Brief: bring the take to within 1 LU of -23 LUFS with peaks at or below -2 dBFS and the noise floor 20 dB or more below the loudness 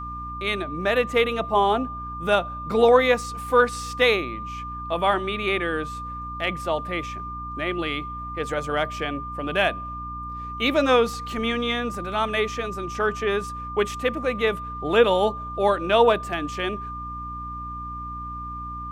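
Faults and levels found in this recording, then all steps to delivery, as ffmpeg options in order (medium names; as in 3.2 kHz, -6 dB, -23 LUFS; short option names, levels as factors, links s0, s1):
hum 60 Hz; highest harmonic 300 Hz; hum level -35 dBFS; steady tone 1.2 kHz; tone level -32 dBFS; loudness -24.0 LUFS; peak level -4.5 dBFS; loudness target -23.0 LUFS
-> -af "bandreject=f=60:t=h:w=6,bandreject=f=120:t=h:w=6,bandreject=f=180:t=h:w=6,bandreject=f=240:t=h:w=6,bandreject=f=300:t=h:w=6"
-af "bandreject=f=1200:w=30"
-af "volume=1.12"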